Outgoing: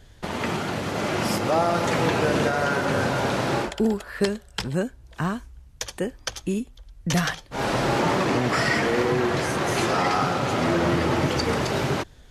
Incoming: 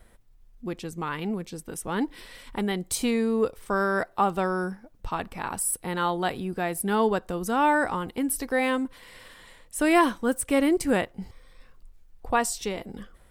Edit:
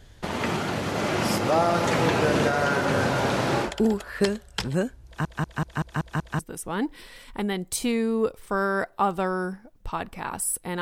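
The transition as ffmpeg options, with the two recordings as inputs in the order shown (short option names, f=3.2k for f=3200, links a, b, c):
-filter_complex "[0:a]apad=whole_dur=10.81,atrim=end=10.81,asplit=7[a][b][c][d][e][f][g];[a]atrim=end=5.252[h];[b]atrim=start=5.058:end=5.252[i];[c]atrim=start=5.058:end=5.252[j];[d]atrim=start=5.058:end=5.252[k];[e]atrim=start=5.058:end=5.252[l];[f]atrim=start=5.058:end=5.252[m];[g]atrim=start=5.058:end=5.252[n];[1:a]atrim=start=1.578:end=6[o];[h][i]acrossfade=d=0.004:c1=hsin:c2=hsin[p];[p][j]acrossfade=d=0.004:c1=hsin:c2=hsin[q];[q][k]acrossfade=d=0.004:c1=hsin:c2=hsin[r];[r][l]acrossfade=d=0.004:c1=hsin:c2=hsin[s];[s][m]acrossfade=d=0.004:c1=hsin:c2=hsin[t];[t][n]acrossfade=d=0.004:c1=hsin:c2=hsin[u];[u][o]acrossfade=d=0.004:c1=hsin:c2=hsin"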